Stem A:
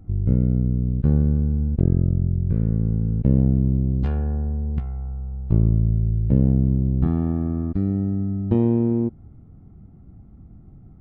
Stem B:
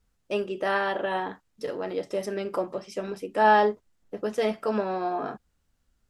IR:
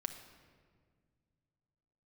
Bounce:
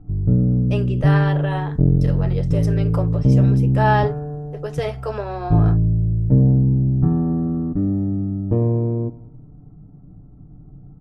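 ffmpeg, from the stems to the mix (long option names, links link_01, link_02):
-filter_complex "[0:a]lowpass=1100,aecho=1:1:6.8:0.98,volume=0.5dB,asplit=2[link_01][link_02];[link_02]volume=-16.5dB[link_03];[1:a]highpass=frequency=310:width=0.5412,highpass=frequency=310:width=1.3066,adelay=400,volume=1dB[link_04];[link_03]aecho=0:1:93|186|279|372|465|558|651|744:1|0.53|0.281|0.149|0.0789|0.0418|0.0222|0.0117[link_05];[link_01][link_04][link_05]amix=inputs=3:normalize=0"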